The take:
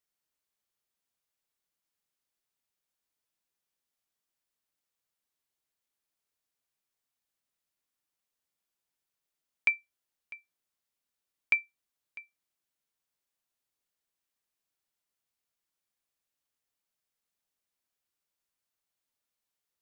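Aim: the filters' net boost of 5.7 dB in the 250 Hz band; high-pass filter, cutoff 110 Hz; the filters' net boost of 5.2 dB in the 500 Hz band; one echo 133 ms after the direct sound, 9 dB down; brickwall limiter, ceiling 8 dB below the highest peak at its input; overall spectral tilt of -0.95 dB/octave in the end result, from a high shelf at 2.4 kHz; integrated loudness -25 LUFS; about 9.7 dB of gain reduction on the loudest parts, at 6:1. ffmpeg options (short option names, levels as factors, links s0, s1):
-af "highpass=110,equalizer=f=250:t=o:g=6,equalizer=f=500:t=o:g=4.5,highshelf=f=2400:g=9,acompressor=threshold=0.0447:ratio=6,alimiter=limit=0.119:level=0:latency=1,aecho=1:1:133:0.355,volume=7.5"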